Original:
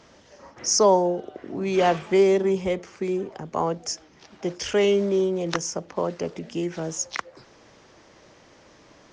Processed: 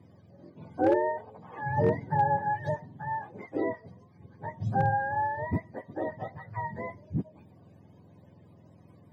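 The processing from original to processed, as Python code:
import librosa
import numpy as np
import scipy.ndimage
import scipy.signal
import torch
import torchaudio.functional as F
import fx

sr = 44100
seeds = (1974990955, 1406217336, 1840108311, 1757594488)

y = fx.octave_mirror(x, sr, pivot_hz=570.0)
y = fx.low_shelf(y, sr, hz=350.0, db=10.5)
y = fx.notch_comb(y, sr, f0_hz=1400.0)
y = np.clip(y, -10.0 ** (-8.5 / 20.0), 10.0 ** (-8.5 / 20.0))
y = y * librosa.db_to_amplitude(-7.5)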